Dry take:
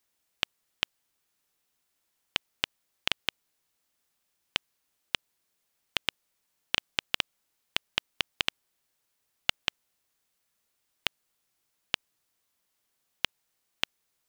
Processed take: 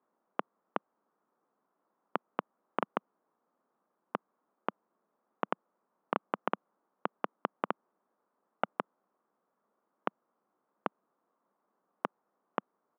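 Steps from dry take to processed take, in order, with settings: in parallel at -10 dB: soft clip -14.5 dBFS, distortion -8 dB; on the sum: Chebyshev band-pass 200–1200 Hz, order 3; tempo 1.1×; gain +8 dB

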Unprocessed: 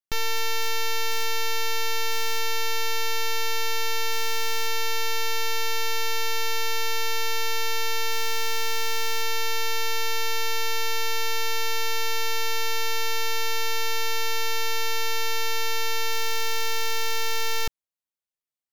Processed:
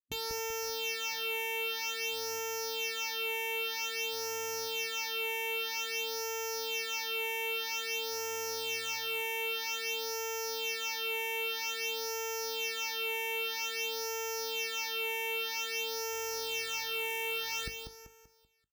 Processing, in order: resonator 51 Hz, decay 0.22 s, harmonics all, mix 50%; on a send: feedback echo 0.193 s, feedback 40%, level -7.5 dB; on the sum: phaser stages 8, 0.51 Hz, lowest notch 180–3900 Hz; spectral gate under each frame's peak -15 dB weak; gain -2 dB

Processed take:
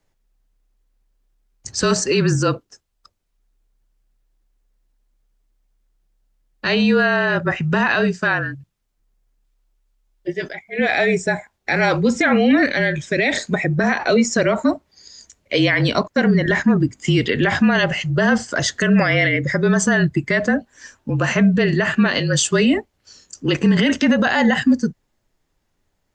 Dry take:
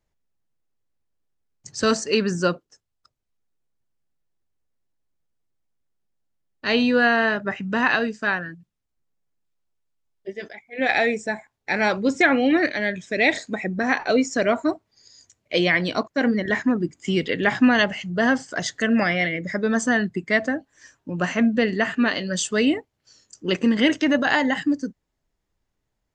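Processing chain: limiter -16 dBFS, peak gain reduction 10.5 dB; frequency shift -34 Hz; gain +8.5 dB

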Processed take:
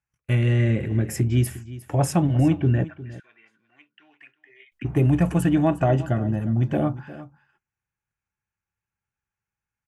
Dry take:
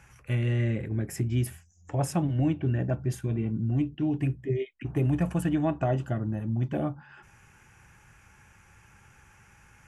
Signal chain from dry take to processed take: gate -49 dBFS, range -40 dB; 2.84–4.72 ladder band-pass 2000 Hz, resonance 40%; echo 0.356 s -16.5 dB; gain +6.5 dB

